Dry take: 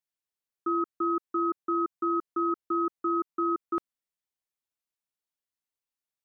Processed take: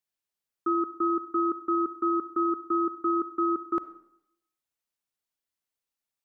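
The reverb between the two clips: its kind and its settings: algorithmic reverb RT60 0.76 s, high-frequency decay 0.8×, pre-delay 15 ms, DRR 14.5 dB; trim +2 dB

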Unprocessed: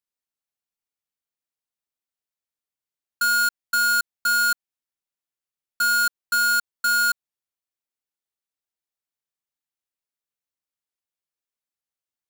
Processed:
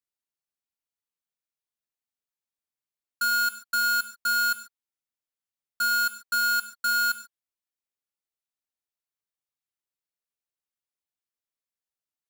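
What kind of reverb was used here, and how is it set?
gated-style reverb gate 160 ms flat, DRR 10 dB; trim -4.5 dB

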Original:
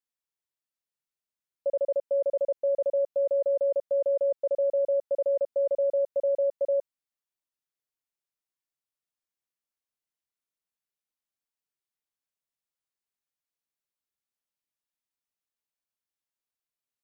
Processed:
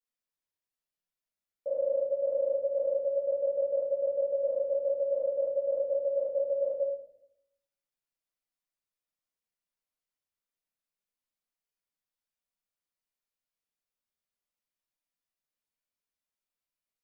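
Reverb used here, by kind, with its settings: simulated room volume 150 m³, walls mixed, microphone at 1.9 m; trim -8.5 dB

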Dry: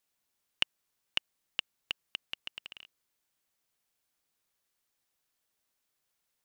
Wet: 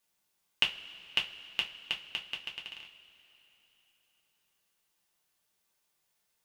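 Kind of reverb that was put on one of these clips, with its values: two-slope reverb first 0.22 s, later 3.6 s, from -22 dB, DRR -1 dB

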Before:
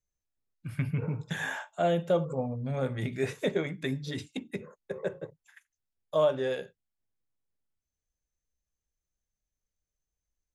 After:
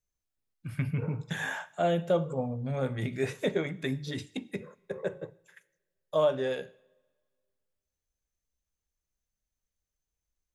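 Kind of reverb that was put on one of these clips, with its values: two-slope reverb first 0.75 s, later 1.9 s, from -18 dB, DRR 18.5 dB

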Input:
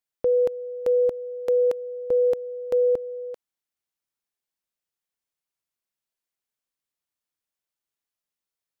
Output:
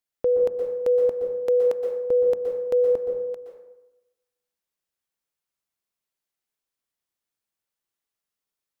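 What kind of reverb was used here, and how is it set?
plate-style reverb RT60 0.98 s, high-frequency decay 0.5×, pre-delay 110 ms, DRR 3 dB

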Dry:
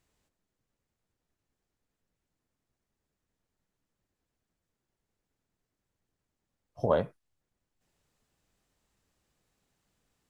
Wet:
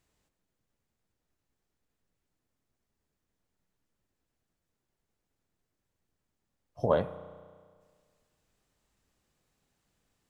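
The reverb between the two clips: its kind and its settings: spring tank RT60 1.8 s, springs 33 ms, chirp 30 ms, DRR 12.5 dB

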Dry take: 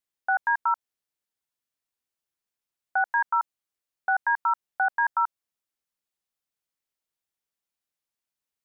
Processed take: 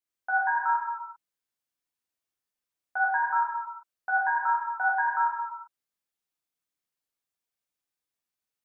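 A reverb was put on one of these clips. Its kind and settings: gated-style reverb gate 430 ms falling, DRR -6 dB; trim -7.5 dB

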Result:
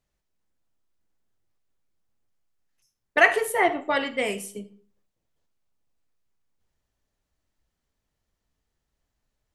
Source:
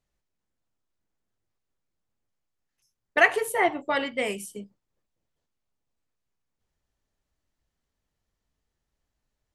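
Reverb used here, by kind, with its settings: algorithmic reverb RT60 0.48 s, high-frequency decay 0.7×, pre-delay 10 ms, DRR 13 dB; trim +1.5 dB

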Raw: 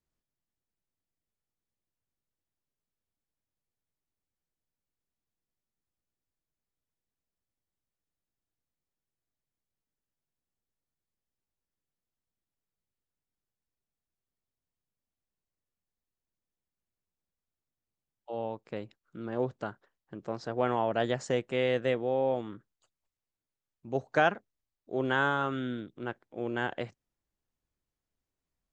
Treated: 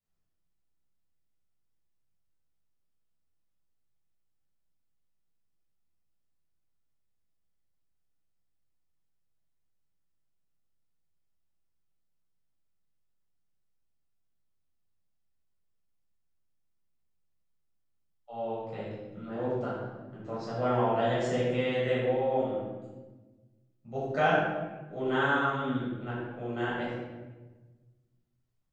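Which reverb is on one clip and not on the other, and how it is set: simulated room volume 840 m³, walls mixed, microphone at 6.6 m; trim -11.5 dB

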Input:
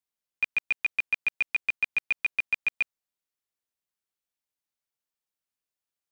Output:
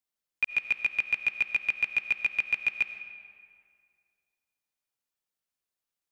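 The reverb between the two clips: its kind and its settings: algorithmic reverb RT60 2.2 s, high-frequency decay 0.65×, pre-delay 45 ms, DRR 9.5 dB

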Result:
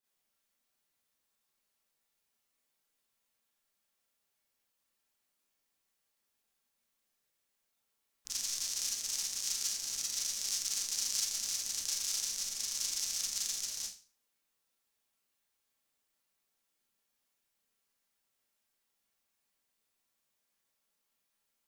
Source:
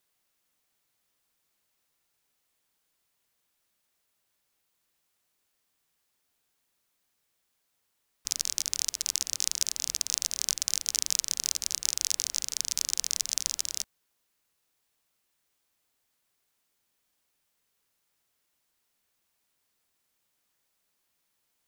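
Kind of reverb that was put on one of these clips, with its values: Schroeder reverb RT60 0.37 s, combs from 28 ms, DRR -8.5 dB; trim -14 dB

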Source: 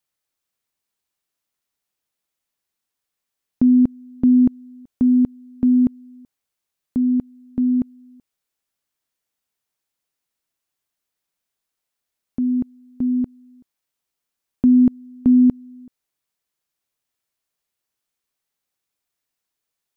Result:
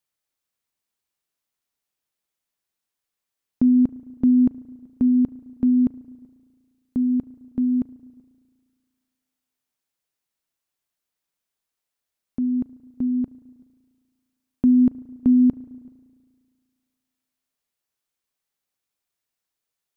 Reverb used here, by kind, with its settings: spring tank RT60 1.9 s, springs 35 ms, chirp 65 ms, DRR 16.5 dB; trim -2.5 dB

